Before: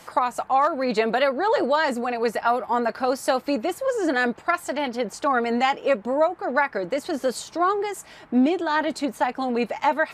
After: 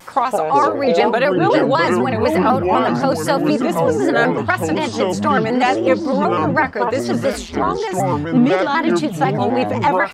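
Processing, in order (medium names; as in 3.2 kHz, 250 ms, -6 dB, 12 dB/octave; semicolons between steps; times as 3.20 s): band-stop 630 Hz, Q 12; ever faster or slower copies 83 ms, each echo -7 st, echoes 2; 7.32–7.79 s: ring modulator 130 Hz -> 38 Hz; vibrato with a chosen wave square 4 Hz, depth 100 cents; trim +5 dB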